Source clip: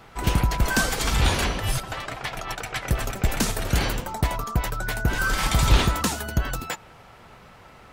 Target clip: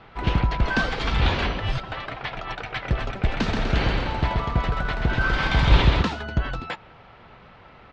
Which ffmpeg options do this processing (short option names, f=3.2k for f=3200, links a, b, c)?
-filter_complex "[0:a]lowpass=f=4k:w=0.5412,lowpass=f=4k:w=1.3066,asplit=3[a][b][c];[a]afade=t=out:st=3.46:d=0.02[d];[b]aecho=1:1:130|247|352.3|447.1|532.4:0.631|0.398|0.251|0.158|0.1,afade=t=in:st=3.46:d=0.02,afade=t=out:st=6.02:d=0.02[e];[c]afade=t=in:st=6.02:d=0.02[f];[d][e][f]amix=inputs=3:normalize=0"